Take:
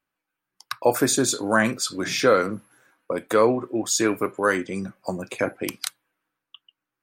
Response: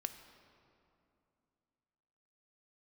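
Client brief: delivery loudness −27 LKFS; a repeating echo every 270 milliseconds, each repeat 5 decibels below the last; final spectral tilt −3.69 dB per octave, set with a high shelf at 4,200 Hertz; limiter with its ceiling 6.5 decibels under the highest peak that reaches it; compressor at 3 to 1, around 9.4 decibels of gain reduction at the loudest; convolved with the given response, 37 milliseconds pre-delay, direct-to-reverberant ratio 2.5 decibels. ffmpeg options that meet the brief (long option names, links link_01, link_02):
-filter_complex "[0:a]highshelf=frequency=4200:gain=-6,acompressor=threshold=-26dB:ratio=3,alimiter=limit=-19dB:level=0:latency=1,aecho=1:1:270|540|810|1080|1350|1620|1890:0.562|0.315|0.176|0.0988|0.0553|0.031|0.0173,asplit=2[link_01][link_02];[1:a]atrim=start_sample=2205,adelay=37[link_03];[link_02][link_03]afir=irnorm=-1:irlink=0,volume=-1dB[link_04];[link_01][link_04]amix=inputs=2:normalize=0,volume=1dB"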